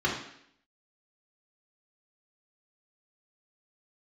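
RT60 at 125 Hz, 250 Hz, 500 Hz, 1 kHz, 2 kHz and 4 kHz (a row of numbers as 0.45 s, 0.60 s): 0.60 s, 0.75 s, 0.70 s, 0.70 s, 0.75 s, 0.70 s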